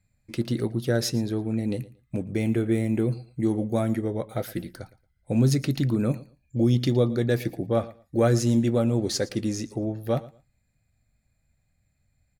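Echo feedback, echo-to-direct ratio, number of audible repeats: 19%, -19.5 dB, 2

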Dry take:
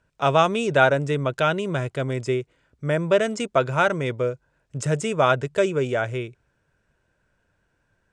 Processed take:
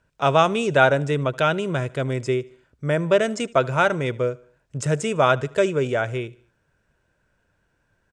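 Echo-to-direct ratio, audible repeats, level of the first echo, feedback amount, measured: -22.0 dB, 2, -23.0 dB, 48%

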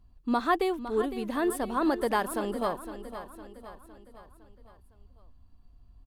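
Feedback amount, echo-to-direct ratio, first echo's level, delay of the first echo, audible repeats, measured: 51%, -10.5 dB, -12.0 dB, 509 ms, 4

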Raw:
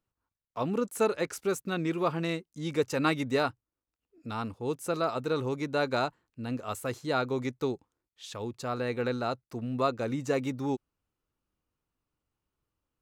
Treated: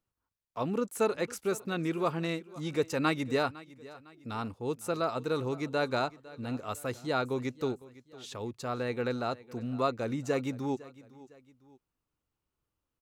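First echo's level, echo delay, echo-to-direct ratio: -19.5 dB, 506 ms, -19.0 dB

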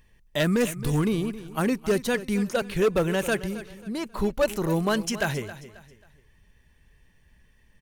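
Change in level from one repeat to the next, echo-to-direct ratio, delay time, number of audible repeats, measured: -9.5 dB, -14.5 dB, 269 ms, 3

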